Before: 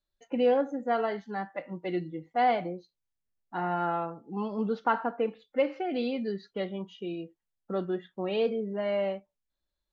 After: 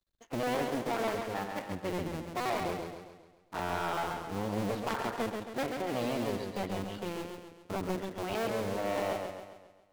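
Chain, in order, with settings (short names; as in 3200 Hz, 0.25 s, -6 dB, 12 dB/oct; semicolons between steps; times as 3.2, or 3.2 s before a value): cycle switcher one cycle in 2, muted; soft clip -31 dBFS, distortion -7 dB; warbling echo 0.135 s, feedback 49%, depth 81 cents, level -5 dB; gain +3.5 dB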